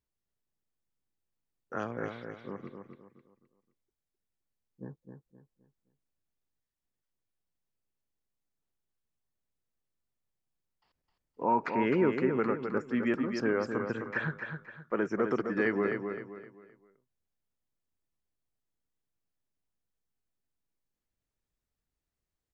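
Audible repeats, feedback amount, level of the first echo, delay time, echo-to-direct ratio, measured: 4, 34%, -6.5 dB, 260 ms, -6.0 dB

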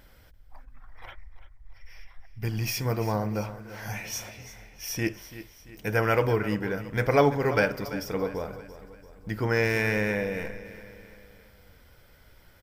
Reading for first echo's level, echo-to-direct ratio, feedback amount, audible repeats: -14.5 dB, -13.5 dB, 48%, 4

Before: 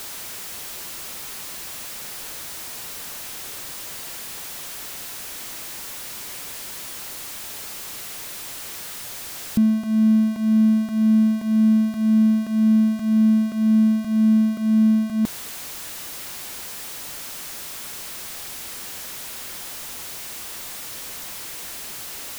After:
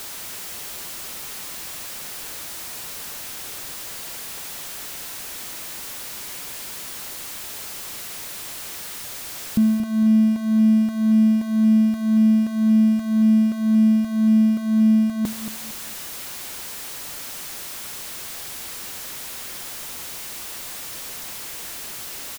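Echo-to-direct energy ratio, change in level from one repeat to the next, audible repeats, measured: -9.5 dB, -10.0 dB, 3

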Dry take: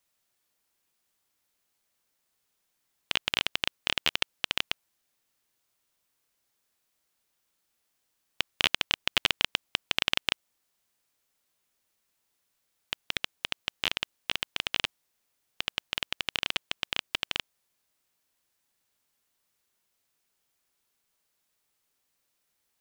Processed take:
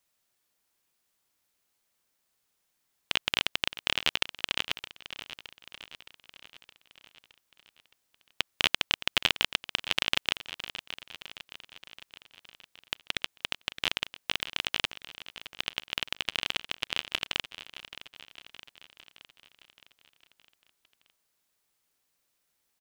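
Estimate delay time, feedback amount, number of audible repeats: 617 ms, 58%, 5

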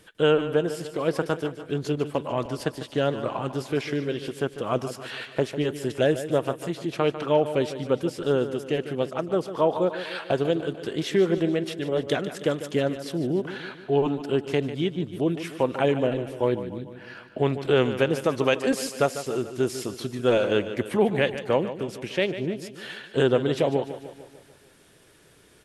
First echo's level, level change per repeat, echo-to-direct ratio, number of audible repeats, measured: -12.0 dB, -5.0 dB, -10.5 dB, 5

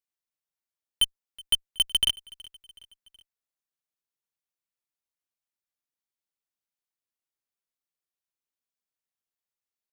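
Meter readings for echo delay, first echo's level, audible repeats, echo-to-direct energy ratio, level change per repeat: 372 ms, -23.0 dB, 3, -21.5 dB, -5.5 dB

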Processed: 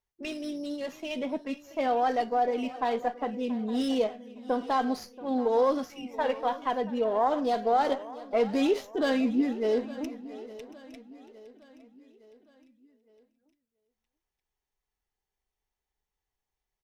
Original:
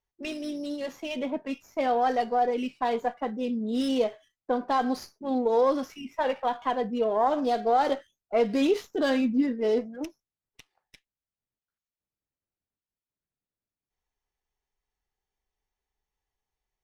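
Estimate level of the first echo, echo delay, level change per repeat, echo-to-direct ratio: -18.0 dB, 680 ms, no regular repeats, -14.5 dB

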